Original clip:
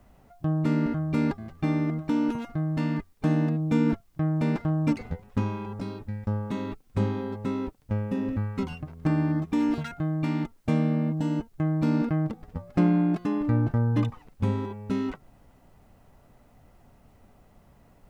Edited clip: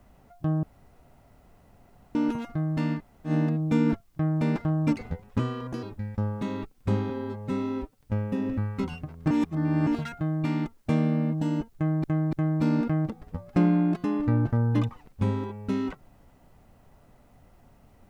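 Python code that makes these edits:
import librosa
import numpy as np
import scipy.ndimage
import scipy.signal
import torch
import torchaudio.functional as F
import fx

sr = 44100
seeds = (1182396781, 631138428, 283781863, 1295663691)

y = fx.edit(x, sr, fx.room_tone_fill(start_s=0.63, length_s=1.52),
    fx.room_tone_fill(start_s=2.98, length_s=0.31, crossfade_s=0.1),
    fx.speed_span(start_s=5.39, length_s=0.53, speed=1.21),
    fx.stretch_span(start_s=7.19, length_s=0.6, factor=1.5),
    fx.reverse_span(start_s=9.1, length_s=0.56),
    fx.repeat(start_s=11.54, length_s=0.29, count=3), tone=tone)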